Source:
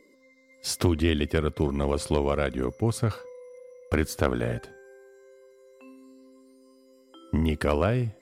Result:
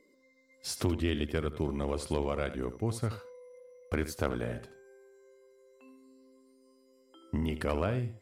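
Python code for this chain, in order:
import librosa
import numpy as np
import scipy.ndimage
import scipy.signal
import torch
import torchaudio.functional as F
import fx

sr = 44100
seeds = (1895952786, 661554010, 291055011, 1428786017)

y = x + 10.0 ** (-12.5 / 20.0) * np.pad(x, (int(81 * sr / 1000.0), 0))[:len(x)]
y = y * 10.0 ** (-7.0 / 20.0)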